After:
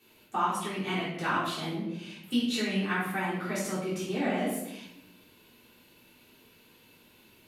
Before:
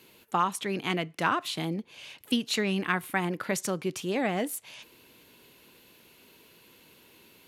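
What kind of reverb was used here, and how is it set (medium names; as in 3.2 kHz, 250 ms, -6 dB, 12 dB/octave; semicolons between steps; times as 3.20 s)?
simulated room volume 260 m³, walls mixed, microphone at 3.5 m; trim -12 dB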